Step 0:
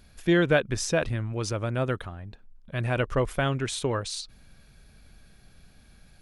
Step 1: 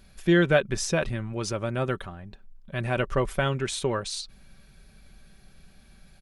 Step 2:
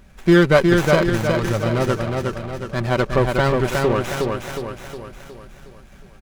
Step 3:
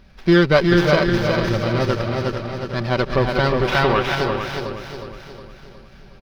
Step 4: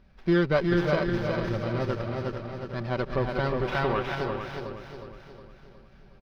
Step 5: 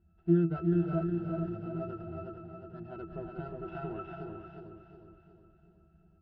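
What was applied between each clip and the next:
comb 5.2 ms, depth 40%
feedback delay 363 ms, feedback 50%, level -3.5 dB; sliding maximum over 9 samples; trim +7 dB
time-frequency box 3.67–4.15 s, 650–3900 Hz +6 dB; resonant high shelf 6.1 kHz -7.5 dB, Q 3; on a send: multi-tap echo 335/449 ms -12/-9 dB; on the sum: trim -1 dB
treble shelf 3 kHz -9 dB; trim -8.5 dB
pitch-class resonator E, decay 0.18 s; trim +3 dB

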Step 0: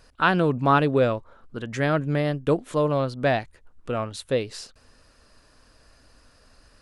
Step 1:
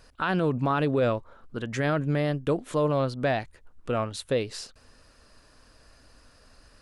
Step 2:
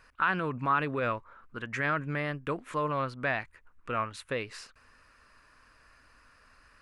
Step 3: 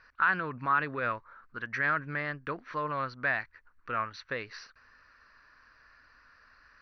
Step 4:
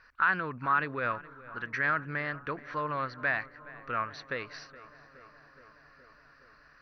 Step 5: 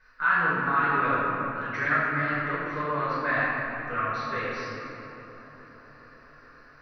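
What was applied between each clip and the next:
peak limiter -16.5 dBFS, peak gain reduction 10 dB
high-order bell 1.6 kHz +11 dB; trim -8.5 dB
rippled Chebyshev low-pass 6 kHz, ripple 9 dB; trim +3.5 dB
filtered feedback delay 419 ms, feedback 76%, low-pass 2.6 kHz, level -18 dB
reverberation RT60 3.0 s, pre-delay 3 ms, DRR -11.5 dB; trim -8.5 dB

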